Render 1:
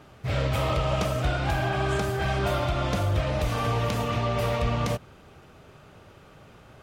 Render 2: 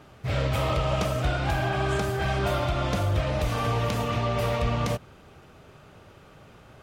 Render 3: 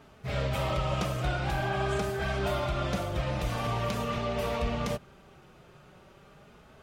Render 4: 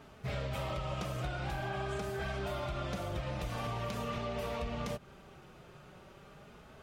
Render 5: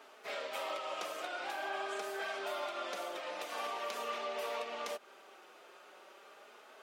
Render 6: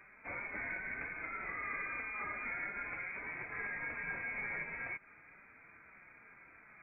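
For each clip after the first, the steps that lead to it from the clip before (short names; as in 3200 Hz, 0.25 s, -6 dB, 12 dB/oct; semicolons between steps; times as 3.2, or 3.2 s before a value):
nothing audible
flange 0.44 Hz, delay 4.5 ms, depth 1.2 ms, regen -33%
compressor, threshold -34 dBFS, peak gain reduction 9.5 dB
Bessel high-pass 520 Hz, order 6; gain +2 dB
inverted band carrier 2800 Hz; gain -1.5 dB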